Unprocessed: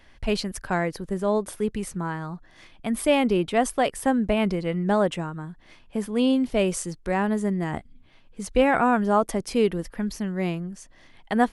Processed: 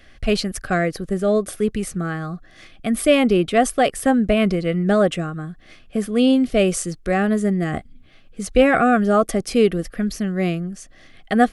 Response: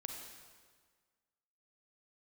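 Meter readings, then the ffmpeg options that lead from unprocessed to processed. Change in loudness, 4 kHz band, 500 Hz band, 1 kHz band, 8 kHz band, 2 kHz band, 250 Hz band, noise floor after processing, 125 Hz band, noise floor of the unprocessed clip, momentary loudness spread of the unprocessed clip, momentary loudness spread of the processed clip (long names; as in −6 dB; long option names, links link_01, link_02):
+5.0 dB, +5.5 dB, +5.5 dB, +3.0 dB, +5.5 dB, +5.5 dB, +5.5 dB, −49 dBFS, +5.5 dB, −54 dBFS, 13 LU, 13 LU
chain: -af "asuperstop=centerf=930:order=12:qfactor=3.5,volume=5.5dB"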